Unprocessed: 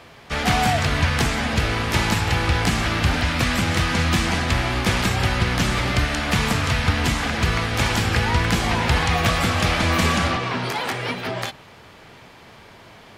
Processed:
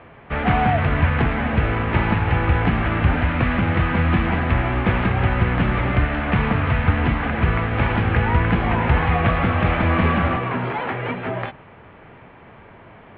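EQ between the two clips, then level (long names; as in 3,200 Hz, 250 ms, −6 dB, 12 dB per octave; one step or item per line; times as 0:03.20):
low-pass filter 2,900 Hz 24 dB per octave
high-frequency loss of the air 400 metres
+3.0 dB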